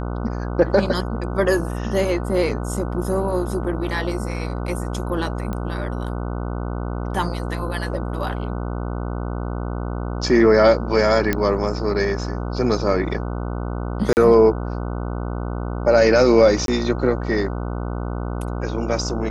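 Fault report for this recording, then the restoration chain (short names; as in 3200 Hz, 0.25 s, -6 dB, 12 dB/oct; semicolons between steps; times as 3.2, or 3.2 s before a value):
buzz 60 Hz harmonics 25 -26 dBFS
5.53 pop -16 dBFS
11.33 pop -6 dBFS
14.13–14.17 gap 39 ms
16.66–16.68 gap 22 ms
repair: de-click; de-hum 60 Hz, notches 25; interpolate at 14.13, 39 ms; interpolate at 16.66, 22 ms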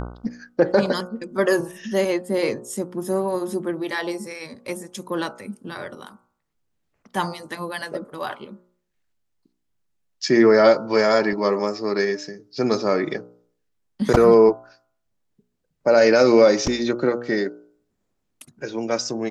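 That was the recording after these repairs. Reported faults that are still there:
none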